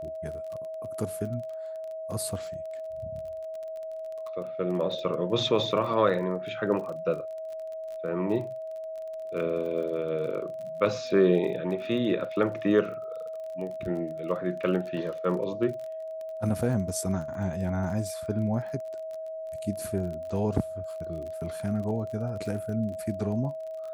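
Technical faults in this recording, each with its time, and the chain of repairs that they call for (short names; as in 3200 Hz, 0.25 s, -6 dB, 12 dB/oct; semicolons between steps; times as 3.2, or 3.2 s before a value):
crackle 32/s -37 dBFS
tone 640 Hz -34 dBFS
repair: de-click; notch 640 Hz, Q 30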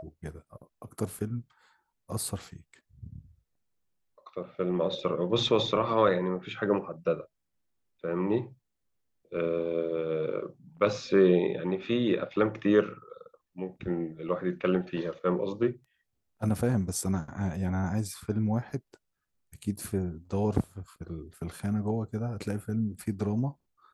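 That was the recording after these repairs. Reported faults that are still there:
none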